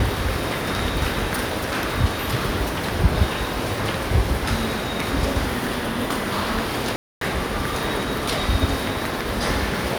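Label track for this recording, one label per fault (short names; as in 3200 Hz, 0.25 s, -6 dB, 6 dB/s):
6.960000	7.210000	gap 0.253 s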